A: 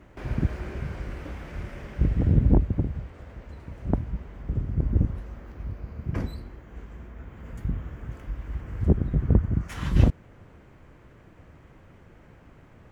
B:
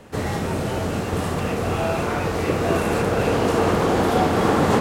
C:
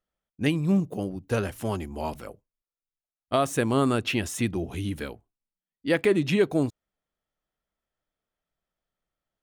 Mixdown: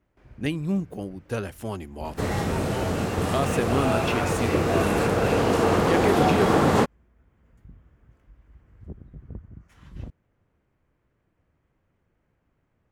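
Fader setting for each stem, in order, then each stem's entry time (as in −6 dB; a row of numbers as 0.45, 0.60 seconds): −19.5, −1.5, −3.0 decibels; 0.00, 2.05, 0.00 seconds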